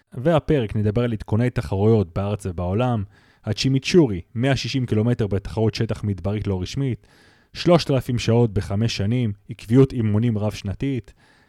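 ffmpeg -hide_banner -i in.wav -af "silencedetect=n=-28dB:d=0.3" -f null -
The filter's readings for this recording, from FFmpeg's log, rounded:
silence_start: 3.04
silence_end: 3.47 | silence_duration: 0.43
silence_start: 6.95
silence_end: 7.55 | silence_duration: 0.61
silence_start: 11.00
silence_end: 11.49 | silence_duration: 0.49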